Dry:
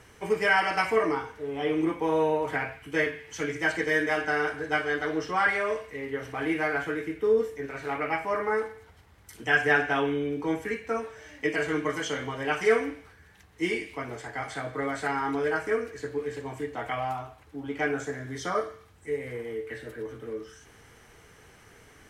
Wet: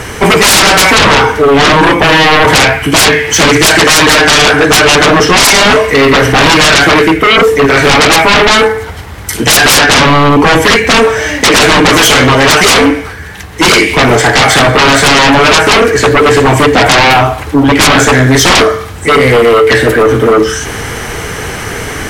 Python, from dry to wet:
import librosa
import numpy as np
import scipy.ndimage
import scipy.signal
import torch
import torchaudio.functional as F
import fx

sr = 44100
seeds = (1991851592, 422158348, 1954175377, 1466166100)

p1 = fx.rider(x, sr, range_db=5, speed_s=0.5)
p2 = x + F.gain(torch.from_numpy(p1), 1.5).numpy()
p3 = fx.fold_sine(p2, sr, drive_db=20, ceiling_db=-4.0)
y = F.gain(torch.from_numpy(p3), 2.0).numpy()